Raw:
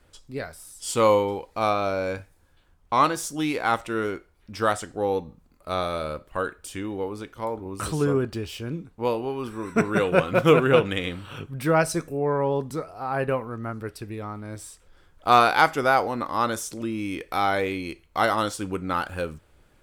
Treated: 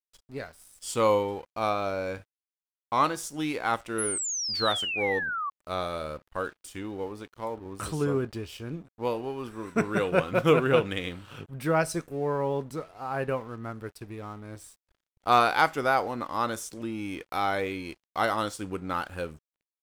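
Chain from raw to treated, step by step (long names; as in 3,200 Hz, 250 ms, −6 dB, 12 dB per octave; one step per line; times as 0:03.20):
dead-zone distortion −48.5 dBFS
sound drawn into the spectrogram fall, 0:03.98–0:05.50, 1,100–11,000 Hz −27 dBFS
level −4 dB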